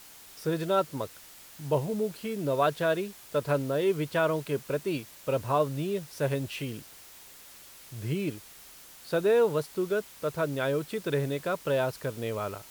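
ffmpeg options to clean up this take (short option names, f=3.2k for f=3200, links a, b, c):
-af "afwtdn=0.0032"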